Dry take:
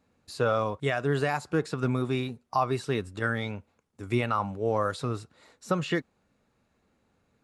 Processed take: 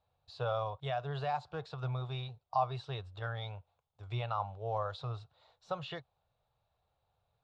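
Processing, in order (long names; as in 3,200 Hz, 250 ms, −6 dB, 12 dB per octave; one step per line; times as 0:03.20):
drawn EQ curve 130 Hz 0 dB, 240 Hz −26 dB, 720 Hz +4 dB, 2,000 Hz −12 dB, 3,600 Hz +2 dB, 10,000 Hz −28 dB
level −5.5 dB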